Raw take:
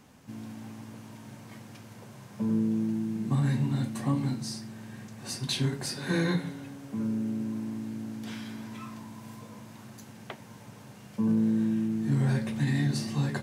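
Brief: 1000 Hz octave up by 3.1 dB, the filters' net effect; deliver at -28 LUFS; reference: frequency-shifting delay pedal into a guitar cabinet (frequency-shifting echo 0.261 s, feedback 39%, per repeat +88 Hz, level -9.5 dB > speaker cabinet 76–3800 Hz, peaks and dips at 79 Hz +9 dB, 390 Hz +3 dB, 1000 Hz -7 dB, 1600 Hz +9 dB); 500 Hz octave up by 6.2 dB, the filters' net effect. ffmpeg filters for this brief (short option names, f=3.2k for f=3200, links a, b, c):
-filter_complex "[0:a]equalizer=f=500:t=o:g=5.5,equalizer=f=1k:t=o:g=5,asplit=5[a][b][c][d][e];[b]adelay=261,afreqshift=88,volume=-9.5dB[f];[c]adelay=522,afreqshift=176,volume=-17.7dB[g];[d]adelay=783,afreqshift=264,volume=-25.9dB[h];[e]adelay=1044,afreqshift=352,volume=-34dB[i];[a][f][g][h][i]amix=inputs=5:normalize=0,highpass=76,equalizer=f=79:t=q:w=4:g=9,equalizer=f=390:t=q:w=4:g=3,equalizer=f=1k:t=q:w=4:g=-7,equalizer=f=1.6k:t=q:w=4:g=9,lowpass=f=3.8k:w=0.5412,lowpass=f=3.8k:w=1.3066"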